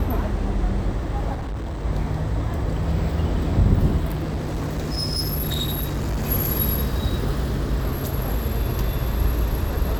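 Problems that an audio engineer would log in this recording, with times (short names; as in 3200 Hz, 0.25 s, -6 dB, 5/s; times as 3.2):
1.34–1.85 clipped -25.5 dBFS
4.09–6.3 clipped -21 dBFS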